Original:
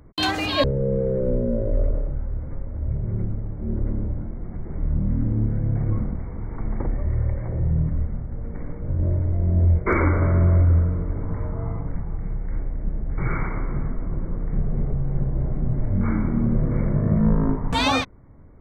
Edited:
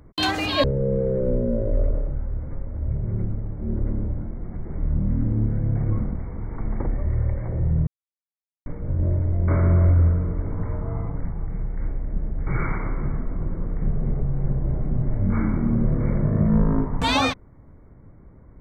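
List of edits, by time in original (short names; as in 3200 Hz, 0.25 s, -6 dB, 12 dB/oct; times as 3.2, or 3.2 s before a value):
7.87–8.66 mute
9.48–10.19 cut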